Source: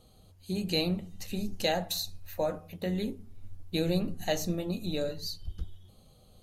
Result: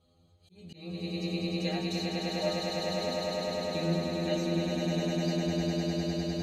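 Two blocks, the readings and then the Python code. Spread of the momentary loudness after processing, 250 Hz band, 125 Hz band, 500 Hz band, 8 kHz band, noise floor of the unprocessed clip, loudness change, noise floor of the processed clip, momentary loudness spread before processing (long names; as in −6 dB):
4 LU, +2.5 dB, +3.0 dB, +2.0 dB, −2.5 dB, −59 dBFS, +1.5 dB, −64 dBFS, 11 LU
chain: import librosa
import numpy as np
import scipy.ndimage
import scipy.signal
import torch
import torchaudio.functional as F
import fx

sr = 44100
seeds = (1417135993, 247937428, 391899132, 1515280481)

p1 = scipy.signal.sosfilt(scipy.signal.butter(2, 45.0, 'highpass', fs=sr, output='sos'), x)
p2 = fx.air_absorb(p1, sr, metres=78.0)
p3 = fx.stiff_resonator(p2, sr, f0_hz=83.0, decay_s=0.42, stiffness=0.002)
p4 = p3 + fx.echo_swell(p3, sr, ms=101, loudest=8, wet_db=-3.0, dry=0)
p5 = fx.auto_swell(p4, sr, attack_ms=299.0)
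y = F.gain(torch.from_numpy(p5), 4.5).numpy()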